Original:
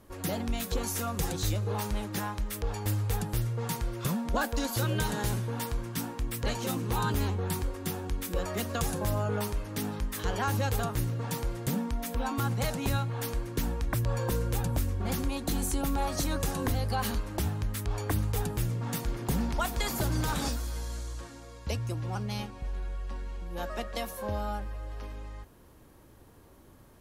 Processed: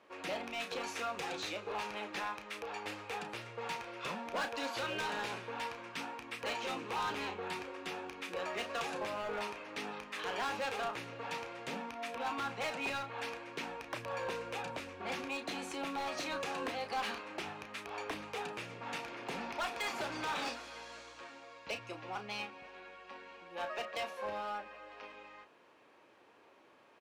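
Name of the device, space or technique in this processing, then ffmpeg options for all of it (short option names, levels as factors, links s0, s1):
megaphone: -filter_complex "[0:a]highpass=490,lowpass=3700,equalizer=f=2500:t=o:w=0.38:g=8,asoftclip=type=hard:threshold=0.0251,asplit=2[s0][s1];[s1]adelay=33,volume=0.355[s2];[s0][s2]amix=inputs=2:normalize=0,volume=0.891"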